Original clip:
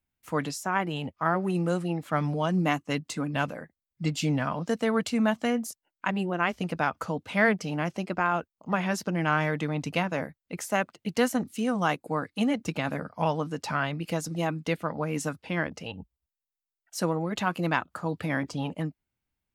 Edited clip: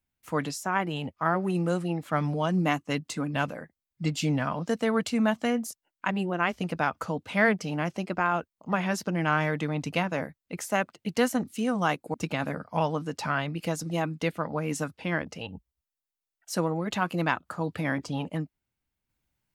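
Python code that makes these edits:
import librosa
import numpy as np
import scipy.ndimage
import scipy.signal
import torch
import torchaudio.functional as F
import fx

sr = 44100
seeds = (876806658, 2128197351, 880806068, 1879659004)

y = fx.edit(x, sr, fx.cut(start_s=12.14, length_s=0.45), tone=tone)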